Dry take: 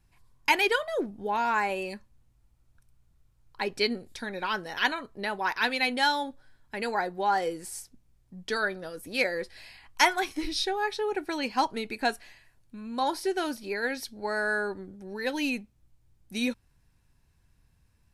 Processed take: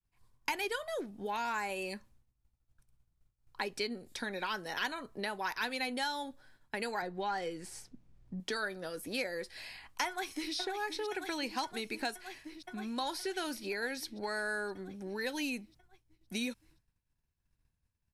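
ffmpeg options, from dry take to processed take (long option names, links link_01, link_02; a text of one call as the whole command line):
ffmpeg -i in.wav -filter_complex "[0:a]asettb=1/sr,asplit=3[link_01][link_02][link_03];[link_01]atrim=end=7.024[link_04];[link_02]atrim=start=7.02:end=8.4,asetpts=PTS-STARTPTS,afade=type=in:duration=0.004:curve=qsin,afade=type=out:start_time=1.376:duration=0.004:curve=qsin,aemphasis=mode=reproduction:type=bsi[link_05];[link_03]atrim=start=8.396[link_06];[link_04][link_05]acrossfade=duration=0.004:curve1=hsin:curve2=qsin[link_07];[link_07][link_06]acrossfade=duration=0.004:curve1=qsin:curve2=hsin,asplit=2[link_08][link_09];[link_09]afade=type=in:start_time=10.07:duration=0.01,afade=type=out:start_time=10.54:duration=0.01,aecho=0:1:520|1040|1560|2080|2600|3120|3640|4160|4680|5200|5720|6240:0.316228|0.237171|0.177878|0.133409|0.100056|0.0750423|0.0562817|0.0422113|0.0316585|0.0237439|0.0178079|0.0133559[link_10];[link_08][link_10]amix=inputs=2:normalize=0,acontrast=80,agate=range=-33dB:threshold=-45dB:ratio=3:detection=peak,acrossover=split=150|1600|5200[link_11][link_12][link_13][link_14];[link_11]acompressor=threshold=-55dB:ratio=4[link_15];[link_12]acompressor=threshold=-33dB:ratio=4[link_16];[link_13]acompressor=threshold=-37dB:ratio=4[link_17];[link_14]acompressor=threshold=-41dB:ratio=4[link_18];[link_15][link_16][link_17][link_18]amix=inputs=4:normalize=0,volume=-5dB" out.wav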